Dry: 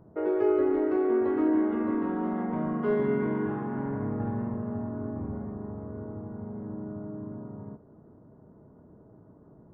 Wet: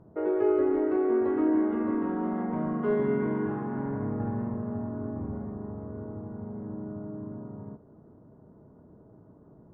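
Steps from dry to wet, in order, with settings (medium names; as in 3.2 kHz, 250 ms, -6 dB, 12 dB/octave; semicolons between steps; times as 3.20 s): low-pass 2.8 kHz 6 dB/octave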